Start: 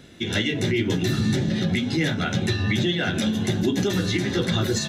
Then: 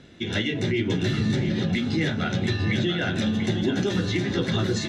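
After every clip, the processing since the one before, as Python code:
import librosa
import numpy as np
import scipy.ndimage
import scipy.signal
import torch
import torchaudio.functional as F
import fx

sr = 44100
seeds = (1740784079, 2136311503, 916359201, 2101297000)

y = fx.air_absorb(x, sr, metres=75.0)
y = y + 10.0 ** (-8.5 / 20.0) * np.pad(y, (int(688 * sr / 1000.0), 0))[:len(y)]
y = y * 10.0 ** (-1.5 / 20.0)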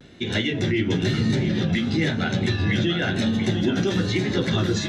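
y = fx.vibrato(x, sr, rate_hz=1.0, depth_cents=64.0)
y = y * 10.0 ** (2.0 / 20.0)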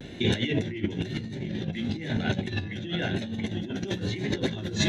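y = fx.graphic_eq_31(x, sr, hz=(1250, 5000, 8000), db=(-12, -7, -4))
y = fx.over_compress(y, sr, threshold_db=-28.0, ratio=-0.5)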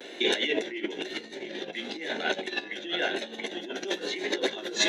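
y = scipy.signal.sosfilt(scipy.signal.butter(4, 370.0, 'highpass', fs=sr, output='sos'), x)
y = y * 10.0 ** (4.0 / 20.0)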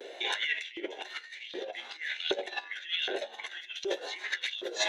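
y = fx.filter_lfo_highpass(x, sr, shape='saw_up', hz=1.3, low_hz=390.0, high_hz=3600.0, q=3.4)
y = y * 10.0 ** (-6.0 / 20.0)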